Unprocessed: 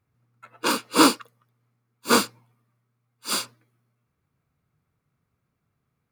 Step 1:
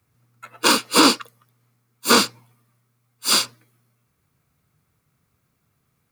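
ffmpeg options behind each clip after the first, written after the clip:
-filter_complex "[0:a]highshelf=f=3600:g=10,acrossover=split=120|610|6100[s0][s1][s2][s3];[s3]acompressor=threshold=0.0316:ratio=6[s4];[s0][s1][s2][s4]amix=inputs=4:normalize=0,alimiter=limit=0.376:level=0:latency=1:release=41,volume=1.88"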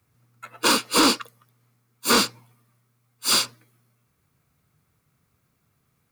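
-af "asoftclip=type=tanh:threshold=0.251"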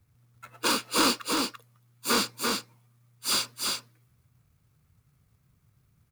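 -filter_complex "[0:a]acrossover=split=140|4200[s0][s1][s2];[s0]acompressor=mode=upward:threshold=0.00355:ratio=2.5[s3];[s3][s1][s2]amix=inputs=3:normalize=0,acrusher=bits=3:mode=log:mix=0:aa=0.000001,aecho=1:1:340:0.668,volume=0.473"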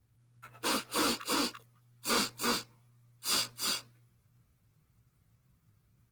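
-af "asoftclip=type=hard:threshold=0.0841,flanger=delay=16.5:depth=2.4:speed=2" -ar 48000 -c:a libopus -b:a 20k

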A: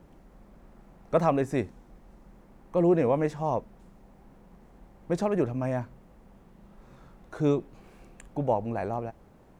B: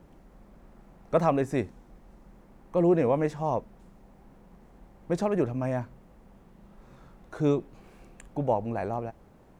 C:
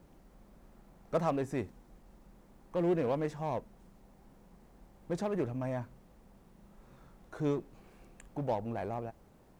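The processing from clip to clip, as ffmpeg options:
-af anull
-filter_complex "[0:a]asplit=2[s0][s1];[s1]aeval=exprs='0.0398*(abs(mod(val(0)/0.0398+3,4)-2)-1)':c=same,volume=0.299[s2];[s0][s2]amix=inputs=2:normalize=0,acrusher=bits=10:mix=0:aa=0.000001,volume=0.422"

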